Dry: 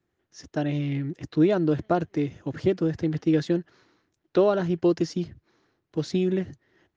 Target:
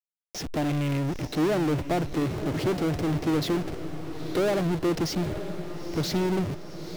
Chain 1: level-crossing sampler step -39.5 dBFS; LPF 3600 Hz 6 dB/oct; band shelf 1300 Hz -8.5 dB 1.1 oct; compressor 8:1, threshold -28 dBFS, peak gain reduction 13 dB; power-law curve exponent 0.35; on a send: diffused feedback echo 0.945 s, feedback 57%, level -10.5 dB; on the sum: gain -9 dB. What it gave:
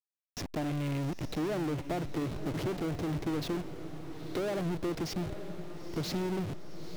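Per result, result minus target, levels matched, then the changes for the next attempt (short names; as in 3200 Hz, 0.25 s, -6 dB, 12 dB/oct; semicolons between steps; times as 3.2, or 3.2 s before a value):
compressor: peak gain reduction +13 dB; level-crossing sampler: distortion +7 dB
remove: compressor 8:1, threshold -28 dBFS, peak gain reduction 13 dB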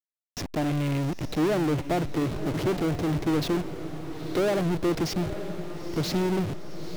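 level-crossing sampler: distortion +7 dB
change: level-crossing sampler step -46.5 dBFS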